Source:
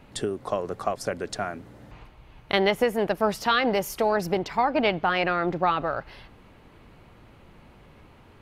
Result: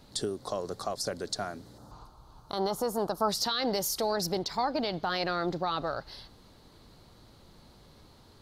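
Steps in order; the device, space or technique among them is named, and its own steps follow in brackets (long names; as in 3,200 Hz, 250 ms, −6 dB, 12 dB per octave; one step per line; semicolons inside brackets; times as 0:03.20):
over-bright horn tweeter (high shelf with overshoot 3,300 Hz +8.5 dB, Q 3; brickwall limiter −15.5 dBFS, peak gain reduction 10.5 dB)
0:01.78–0:03.29: drawn EQ curve 580 Hz 0 dB, 890 Hz +7 dB, 1,300 Hz +8 dB, 1,900 Hz −13 dB, 6,900 Hz −1 dB
level −4.5 dB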